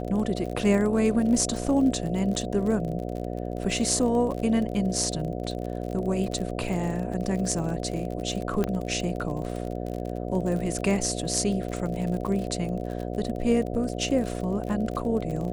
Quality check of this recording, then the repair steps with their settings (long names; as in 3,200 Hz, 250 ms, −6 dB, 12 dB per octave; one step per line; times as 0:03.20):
mains buzz 60 Hz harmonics 12 −32 dBFS
surface crackle 45 per second −32 dBFS
0:08.64: click −13 dBFS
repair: click removal
hum removal 60 Hz, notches 12